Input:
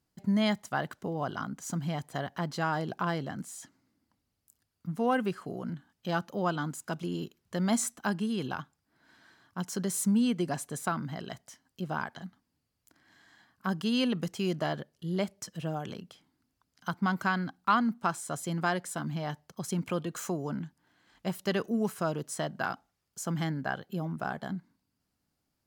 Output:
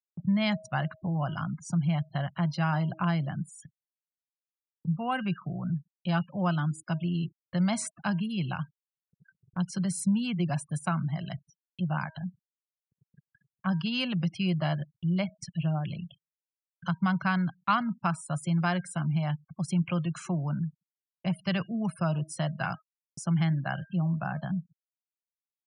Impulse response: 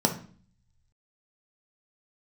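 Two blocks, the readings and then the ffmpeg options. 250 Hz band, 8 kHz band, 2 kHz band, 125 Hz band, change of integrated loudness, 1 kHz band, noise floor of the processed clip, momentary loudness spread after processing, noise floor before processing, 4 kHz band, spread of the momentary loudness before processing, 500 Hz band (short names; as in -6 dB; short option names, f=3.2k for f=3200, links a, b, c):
+2.5 dB, -3.5 dB, +0.5 dB, +7.5 dB, +2.0 dB, -0.5 dB, under -85 dBFS, 8 LU, -81 dBFS, +1.0 dB, 12 LU, -4.0 dB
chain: -filter_complex "[0:a]aresample=22050,aresample=44100,highpass=76,lowshelf=f=200:t=q:w=3:g=8,bandreject=f=317.9:t=h:w=4,bandreject=f=635.8:t=h:w=4,bandreject=f=953.7:t=h:w=4,bandreject=f=1.2716k:t=h:w=4,bandreject=f=1.5895k:t=h:w=4,bandreject=f=1.9074k:t=h:w=4,bandreject=f=2.2253k:t=h:w=4,bandreject=f=2.5432k:t=h:w=4,bandreject=f=2.8611k:t=h:w=4,acrossover=split=190|3000[a][b][c];[a]acompressor=threshold=-35dB:ratio=4[d];[d][b][c]amix=inputs=3:normalize=0,superequalizer=7b=0.316:12b=1.78:15b=0.562,afftfilt=real='re*gte(hypot(re,im),0.00708)':imag='im*gte(hypot(re,im),0.00708)':win_size=1024:overlap=0.75,acompressor=mode=upward:threshold=-37dB:ratio=2.5,agate=range=-49dB:threshold=-49dB:ratio=16:detection=peak"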